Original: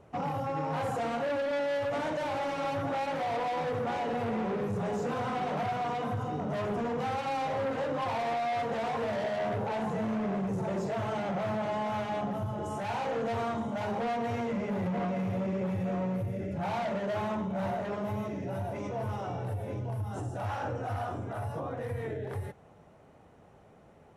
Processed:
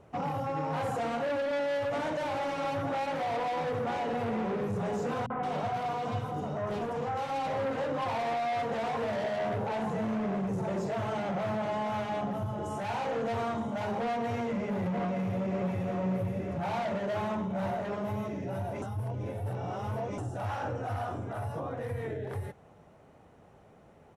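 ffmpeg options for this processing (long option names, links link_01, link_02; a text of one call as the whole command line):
ffmpeg -i in.wav -filter_complex "[0:a]asettb=1/sr,asplit=3[link_01][link_02][link_03];[link_01]atrim=end=5.264[link_04];[link_02]atrim=start=5.26:end=7.47,asetpts=PTS-STARTPTS,afade=type=in:duration=0.004:curve=qsin,afade=type=out:start_time=2.206:duration=0.004:curve=qsin,acrossover=split=240|2000[link_05][link_06][link_07];[link_06]adelay=40[link_08];[link_07]adelay=170[link_09];[link_05][link_08][link_09]amix=inputs=3:normalize=0,atrim=end_sample=97461[link_10];[link_03]atrim=start=7.466[link_11];[link_04][link_10]acrossfade=duration=0.004:curve1=hsin:curve2=qsin[link_12];[link_12][link_11]acrossfade=duration=0.004:curve1=qsin:curve2=hsin,asplit=2[link_13][link_14];[link_14]afade=type=in:start_time=14.93:duration=0.01,afade=type=out:start_time=16:duration=0.01,aecho=0:1:570|1140|1710|2280|2850:0.446684|0.178673|0.0714694|0.0285877|0.0114351[link_15];[link_13][link_15]amix=inputs=2:normalize=0,asplit=3[link_16][link_17][link_18];[link_16]atrim=end=18.822[link_19];[link_17]atrim=start=18.818:end=20.182,asetpts=PTS-STARTPTS,areverse[link_20];[link_18]atrim=start=20.178[link_21];[link_19][link_20]acrossfade=duration=0.004:curve1=hsin:curve2=hsin[link_22];[link_22][link_21]acrossfade=duration=0.004:curve1=hsin:curve2=hsin" out.wav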